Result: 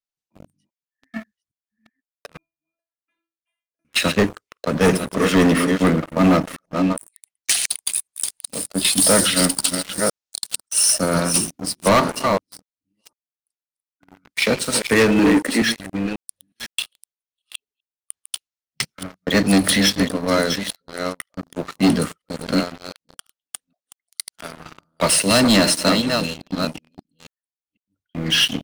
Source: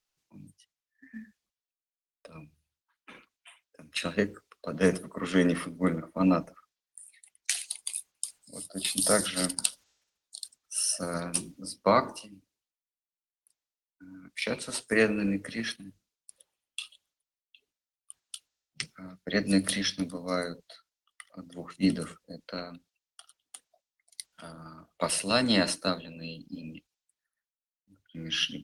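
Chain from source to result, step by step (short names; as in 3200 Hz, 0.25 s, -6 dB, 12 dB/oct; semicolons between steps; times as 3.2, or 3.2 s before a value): reverse delay 0.505 s, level -9.5 dB; 2.37–3.85 metallic resonator 330 Hz, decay 0.33 s, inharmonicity 0.002; 15.19–15.62 resonant low shelf 180 Hz -14 dB, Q 3; sample leveller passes 5; gain -3.5 dB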